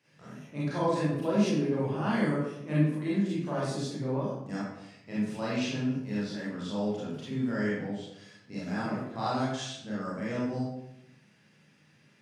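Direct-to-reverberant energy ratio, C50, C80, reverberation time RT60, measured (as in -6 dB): -9.0 dB, -1.0 dB, 3.0 dB, 0.80 s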